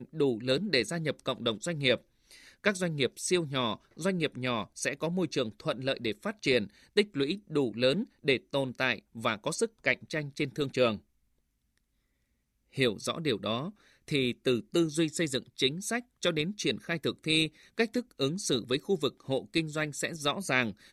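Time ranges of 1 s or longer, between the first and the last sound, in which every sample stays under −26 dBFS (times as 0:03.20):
0:10.92–0:12.78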